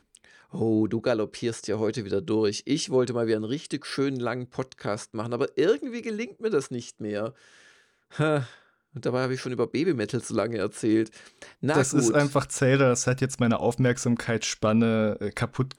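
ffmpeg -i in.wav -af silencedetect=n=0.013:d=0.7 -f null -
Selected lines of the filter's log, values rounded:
silence_start: 7.29
silence_end: 8.15 | silence_duration: 0.85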